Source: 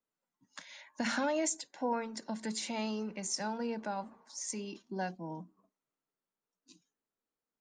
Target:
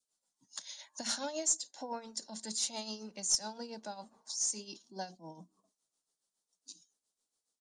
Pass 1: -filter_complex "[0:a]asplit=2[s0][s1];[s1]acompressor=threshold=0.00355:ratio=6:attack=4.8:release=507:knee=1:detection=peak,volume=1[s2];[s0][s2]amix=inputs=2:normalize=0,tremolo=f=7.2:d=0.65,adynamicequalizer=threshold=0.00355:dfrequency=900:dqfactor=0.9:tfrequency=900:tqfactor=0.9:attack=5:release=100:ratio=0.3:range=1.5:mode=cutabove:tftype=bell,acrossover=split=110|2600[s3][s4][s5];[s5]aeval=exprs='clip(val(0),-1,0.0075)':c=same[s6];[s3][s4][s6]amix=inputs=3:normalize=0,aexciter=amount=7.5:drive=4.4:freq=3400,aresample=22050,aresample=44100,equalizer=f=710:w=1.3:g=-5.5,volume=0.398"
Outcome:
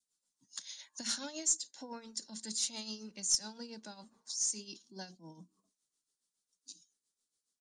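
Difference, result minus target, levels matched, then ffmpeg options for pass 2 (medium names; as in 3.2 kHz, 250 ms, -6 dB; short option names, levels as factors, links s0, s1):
1 kHz band -8.0 dB
-filter_complex "[0:a]asplit=2[s0][s1];[s1]acompressor=threshold=0.00355:ratio=6:attack=4.8:release=507:knee=1:detection=peak,volume=1[s2];[s0][s2]amix=inputs=2:normalize=0,tremolo=f=7.2:d=0.65,adynamicequalizer=threshold=0.00355:dfrequency=900:dqfactor=0.9:tfrequency=900:tqfactor=0.9:attack=5:release=100:ratio=0.3:range=1.5:mode=cutabove:tftype=bell,acrossover=split=110|2600[s3][s4][s5];[s5]aeval=exprs='clip(val(0),-1,0.0075)':c=same[s6];[s3][s4][s6]amix=inputs=3:normalize=0,aexciter=amount=7.5:drive=4.4:freq=3400,aresample=22050,aresample=44100,equalizer=f=710:w=1.3:g=5.5,volume=0.398"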